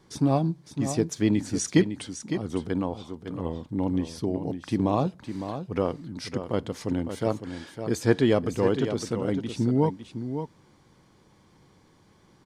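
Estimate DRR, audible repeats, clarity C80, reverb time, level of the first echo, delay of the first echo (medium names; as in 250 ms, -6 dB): no reverb, 1, no reverb, no reverb, -9.0 dB, 557 ms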